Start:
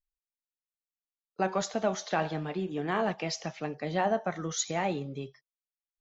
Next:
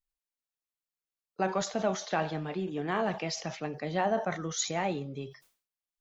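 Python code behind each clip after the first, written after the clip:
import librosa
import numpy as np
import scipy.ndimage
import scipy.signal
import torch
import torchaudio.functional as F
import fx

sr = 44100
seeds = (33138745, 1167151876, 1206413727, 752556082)

y = fx.sustainer(x, sr, db_per_s=130.0)
y = F.gain(torch.from_numpy(y), -1.0).numpy()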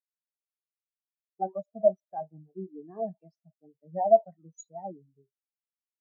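y = fx.spectral_expand(x, sr, expansion=4.0)
y = F.gain(torch.from_numpy(y), 7.5).numpy()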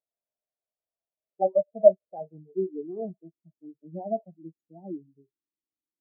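y = fx.filter_sweep_lowpass(x, sr, from_hz=650.0, to_hz=320.0, start_s=1.01, end_s=3.55, q=6.2)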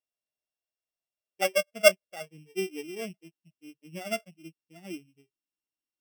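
y = np.r_[np.sort(x[:len(x) // 16 * 16].reshape(-1, 16), axis=1).ravel(), x[len(x) // 16 * 16:]]
y = F.gain(torch.from_numpy(y), -3.0).numpy()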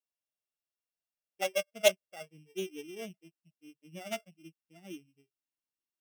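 y = fx.doppler_dist(x, sr, depth_ms=0.12)
y = F.gain(torch.from_numpy(y), -5.5).numpy()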